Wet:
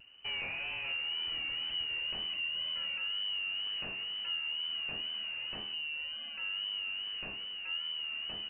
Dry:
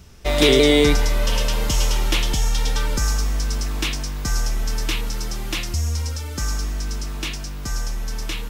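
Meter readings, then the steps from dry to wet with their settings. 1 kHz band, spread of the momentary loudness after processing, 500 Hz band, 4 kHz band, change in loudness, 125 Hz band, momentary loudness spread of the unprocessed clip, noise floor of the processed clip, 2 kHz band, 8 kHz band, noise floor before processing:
-20.5 dB, 4 LU, -33.0 dB, -5.5 dB, -12.5 dB, -35.5 dB, 13 LU, -43 dBFS, -9.0 dB, under -40 dB, -30 dBFS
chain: compressor 2:1, threshold -25 dBFS, peak gain reduction 8 dB; overloaded stage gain 22 dB; inverted band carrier 2900 Hz; resonator 68 Hz, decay 0.99 s, harmonics all, mix 60%; wow and flutter 59 cents; gain -7 dB

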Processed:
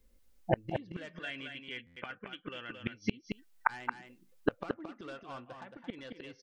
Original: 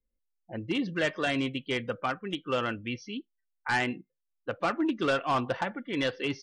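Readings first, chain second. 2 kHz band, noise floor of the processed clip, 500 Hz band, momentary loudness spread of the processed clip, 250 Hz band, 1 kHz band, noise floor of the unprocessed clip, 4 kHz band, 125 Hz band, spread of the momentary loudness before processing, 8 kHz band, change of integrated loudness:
-8.5 dB, -65 dBFS, -8.0 dB, 13 LU, -9.5 dB, -8.0 dB, -81 dBFS, -11.0 dB, -4.5 dB, 12 LU, -13.5 dB, -9.0 dB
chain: spectral gain 1.16–2.72, 1400–3500 Hz +10 dB; flipped gate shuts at -29 dBFS, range -36 dB; echo 0.223 s -6.5 dB; stuck buffer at 1.86, samples 512, times 8; gain +17 dB

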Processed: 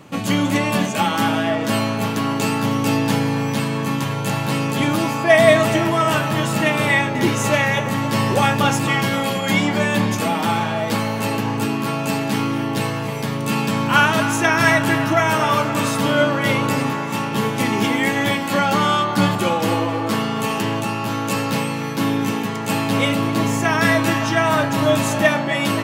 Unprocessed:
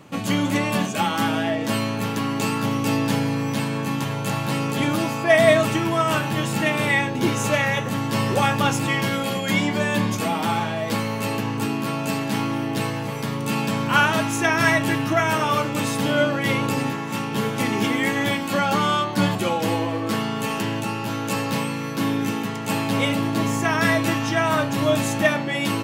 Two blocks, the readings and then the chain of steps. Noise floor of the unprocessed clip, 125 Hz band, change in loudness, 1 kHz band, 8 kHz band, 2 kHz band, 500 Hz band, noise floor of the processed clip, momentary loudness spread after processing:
-28 dBFS, +3.0 dB, +3.5 dB, +4.0 dB, +3.0 dB, +3.5 dB, +3.5 dB, -24 dBFS, 6 LU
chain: narrowing echo 0.263 s, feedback 78%, band-pass 1000 Hz, level -10.5 dB; gain +3 dB

